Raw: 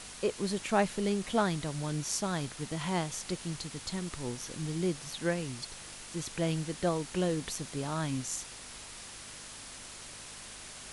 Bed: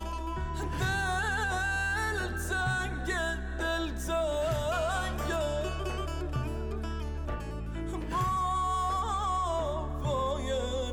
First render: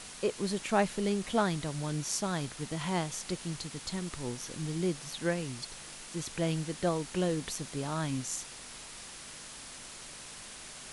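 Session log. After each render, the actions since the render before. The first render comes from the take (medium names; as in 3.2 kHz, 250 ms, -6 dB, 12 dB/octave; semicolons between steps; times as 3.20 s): de-hum 50 Hz, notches 2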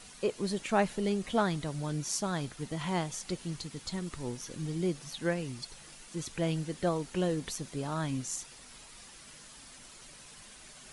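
noise reduction 8 dB, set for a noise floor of -47 dBFS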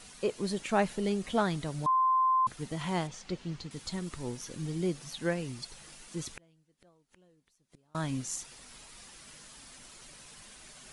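1.86–2.47 s: bleep 1.04 kHz -22.5 dBFS; 3.07–3.71 s: distance through air 110 m; 6.32–7.95 s: inverted gate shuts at -31 dBFS, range -34 dB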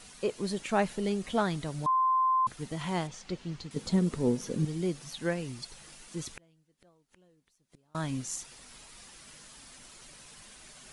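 3.76–4.65 s: small resonant body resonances 220/430 Hz, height 13 dB, ringing for 20 ms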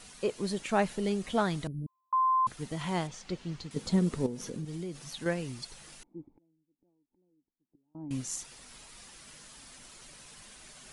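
1.67–2.13 s: inverse Chebyshev band-stop 1.2–5.6 kHz, stop band 70 dB; 4.26–5.26 s: compression, threshold -34 dBFS; 6.03–8.11 s: cascade formant filter u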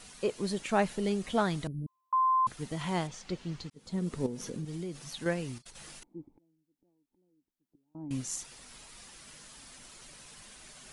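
3.70–4.35 s: fade in; 5.58–6.05 s: compressor with a negative ratio -51 dBFS, ratio -0.5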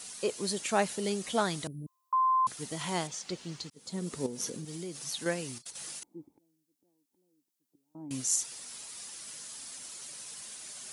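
high-pass 87 Hz 12 dB/octave; tone controls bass -5 dB, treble +10 dB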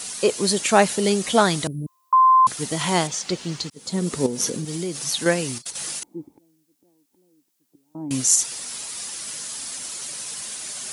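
trim +12 dB; peak limiter -3 dBFS, peak gain reduction 2 dB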